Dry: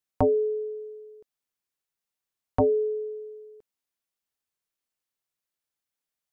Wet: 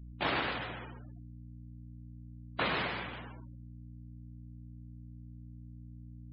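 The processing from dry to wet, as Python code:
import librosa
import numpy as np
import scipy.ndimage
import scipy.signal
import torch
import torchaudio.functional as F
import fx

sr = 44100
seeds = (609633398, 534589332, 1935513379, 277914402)

y = fx.cycle_switch(x, sr, every=2, mode='muted')
y = scipy.signal.sosfilt(scipy.signal.butter(4, 330.0, 'highpass', fs=sr, output='sos'), y)
y = fx.noise_vocoder(y, sr, seeds[0], bands=1)
y = fx.add_hum(y, sr, base_hz=60, snr_db=11)
y = fx.air_absorb(y, sr, metres=340.0)
y = fx.echo_feedback(y, sr, ms=126, feedback_pct=16, wet_db=-7)
y = fx.spec_gate(y, sr, threshold_db=-15, keep='strong')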